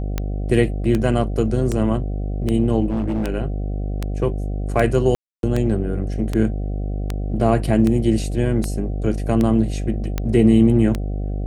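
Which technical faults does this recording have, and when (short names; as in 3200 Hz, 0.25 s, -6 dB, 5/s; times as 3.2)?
buzz 50 Hz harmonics 15 -24 dBFS
tick 78 rpm -9 dBFS
2.87–3.28 clipped -18 dBFS
5.15–5.43 gap 0.282 s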